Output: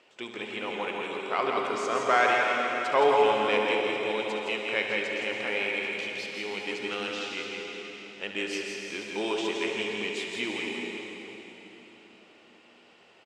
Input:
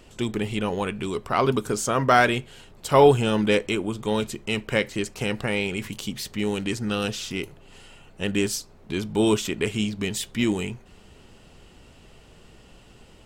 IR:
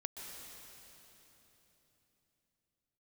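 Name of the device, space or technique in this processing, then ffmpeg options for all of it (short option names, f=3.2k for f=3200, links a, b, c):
station announcement: -filter_complex "[0:a]highpass=460,lowpass=4.5k,equalizer=f=2.3k:t=o:w=0.45:g=4.5,aecho=1:1:69.97|166.2:0.316|0.562[a];[1:a]atrim=start_sample=2205[b];[a][b]afir=irnorm=-1:irlink=0,volume=-2dB"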